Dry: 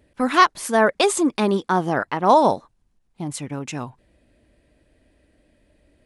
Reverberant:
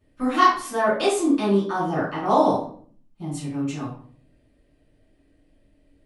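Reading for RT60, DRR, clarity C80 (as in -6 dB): 0.50 s, -8.5 dB, 8.5 dB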